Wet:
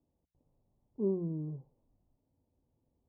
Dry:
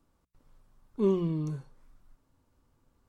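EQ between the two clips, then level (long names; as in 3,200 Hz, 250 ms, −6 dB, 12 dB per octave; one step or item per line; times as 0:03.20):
high-pass filter 51 Hz 12 dB per octave
Butterworth low-pass 820 Hz 36 dB per octave
−6.0 dB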